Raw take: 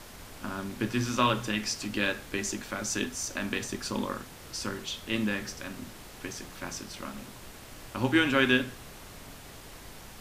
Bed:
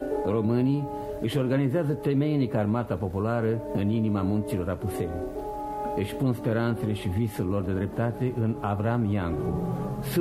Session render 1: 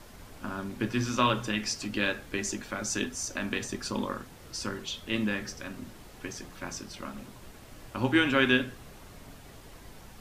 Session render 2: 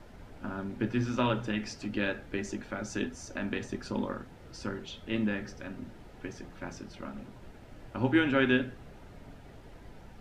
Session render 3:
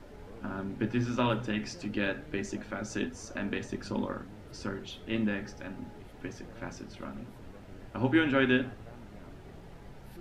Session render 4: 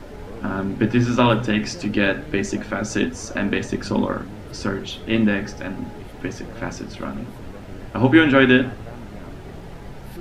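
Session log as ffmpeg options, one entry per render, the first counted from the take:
-af "afftdn=nr=6:nf=-47"
-af "lowpass=f=1.5k:p=1,bandreject=f=1.1k:w=7.5"
-filter_complex "[1:a]volume=-25.5dB[a];[0:a][a]amix=inputs=2:normalize=0"
-af "volume=12dB,alimiter=limit=-2dB:level=0:latency=1"

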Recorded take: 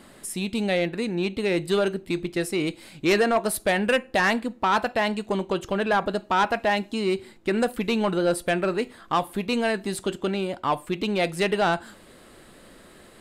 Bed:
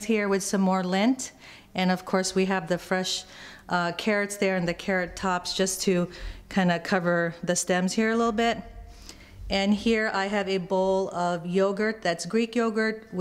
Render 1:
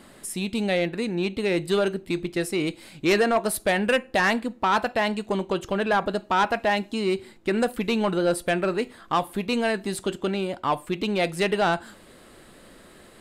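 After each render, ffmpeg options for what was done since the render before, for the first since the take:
-af anull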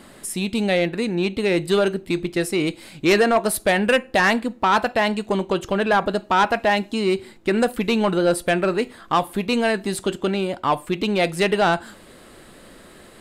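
-af "volume=4dB"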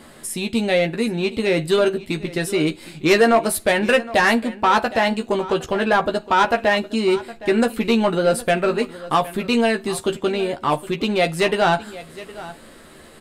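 -filter_complex "[0:a]asplit=2[a][b];[b]adelay=13,volume=-5dB[c];[a][c]amix=inputs=2:normalize=0,aecho=1:1:764:0.133"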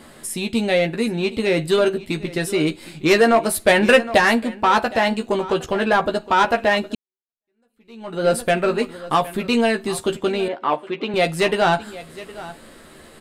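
-filter_complex "[0:a]asettb=1/sr,asplit=3[a][b][c];[a]atrim=end=10.484[d];[b]atrim=start=10.48:end=11.14,asetpts=PTS-STARTPTS,afade=t=in:d=0.004:c=qsin,afade=t=out:st=0.656:d=0.004:c=qsin,highpass=310,lowpass=2.9k[e];[c]atrim=start=11.136[f];[d][e]acrossfade=d=0.004:c1=hsin:c2=qsin[g];[g][f]acrossfade=d=0.004:c1=qsin:c2=hsin,asplit=4[h][i][j][k];[h]atrim=end=3.672[l];[i]atrim=start=3.668:end=4.182,asetpts=PTS-STARTPTS,volume=3.5dB[m];[j]atrim=start=4.178:end=6.95,asetpts=PTS-STARTPTS,afade=t=out:st=2.768:d=0.004:c=hsin[n];[k]atrim=start=6.95,asetpts=PTS-STARTPTS,afade=t=in:d=1.3:c=exp[o];[l][m]acrossfade=d=0.004:c1=hsin:c2=hsin[p];[n][o]concat=n=2:v=0:a=1[q];[p][q]acrossfade=d=0.004:c1=hsin:c2=hsin"

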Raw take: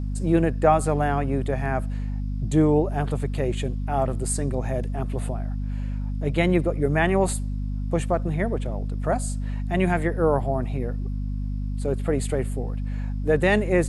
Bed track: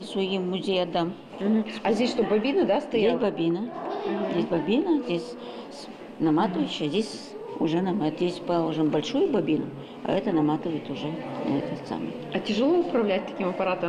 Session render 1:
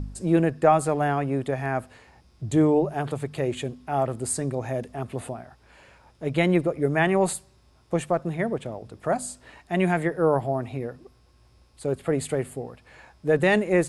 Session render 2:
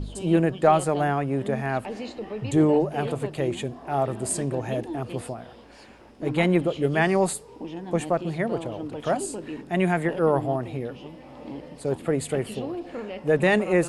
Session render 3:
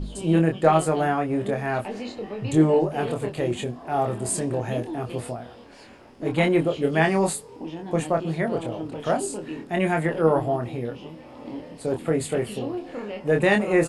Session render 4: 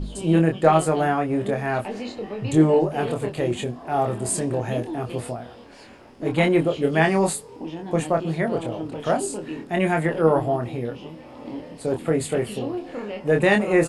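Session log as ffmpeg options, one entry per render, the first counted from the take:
-af "bandreject=f=50:t=h:w=4,bandreject=f=100:t=h:w=4,bandreject=f=150:t=h:w=4,bandreject=f=200:t=h:w=4,bandreject=f=250:t=h:w=4"
-filter_complex "[1:a]volume=-11dB[a];[0:a][a]amix=inputs=2:normalize=0"
-filter_complex "[0:a]asplit=2[a][b];[b]adelay=25,volume=-4.5dB[c];[a][c]amix=inputs=2:normalize=0"
-af "volume=1.5dB"

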